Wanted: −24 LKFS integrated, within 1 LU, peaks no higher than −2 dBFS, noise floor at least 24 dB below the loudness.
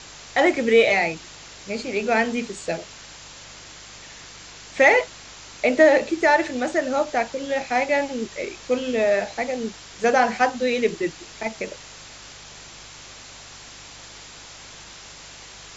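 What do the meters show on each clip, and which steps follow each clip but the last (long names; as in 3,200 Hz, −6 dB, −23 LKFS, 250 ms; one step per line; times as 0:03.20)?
mains hum 50 Hz; hum harmonics up to 150 Hz; level of the hum −53 dBFS; background noise floor −43 dBFS; target noise floor −46 dBFS; integrated loudness −21.5 LKFS; sample peak −3.0 dBFS; target loudness −24.0 LKFS
→ hum removal 50 Hz, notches 3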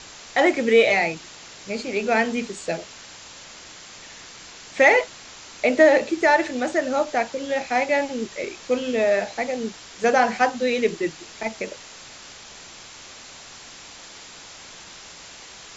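mains hum none found; background noise floor −43 dBFS; target noise floor −46 dBFS
→ broadband denoise 6 dB, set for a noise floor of −43 dBFS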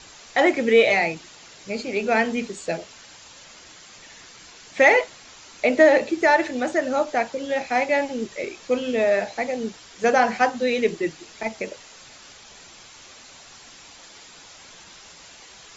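background noise floor −47 dBFS; integrated loudness −21.5 LKFS; sample peak −3.0 dBFS; target loudness −24.0 LKFS
→ level −2.5 dB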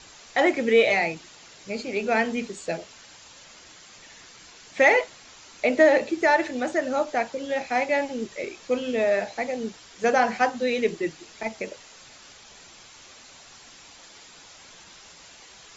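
integrated loudness −24.0 LKFS; sample peak −5.5 dBFS; background noise floor −49 dBFS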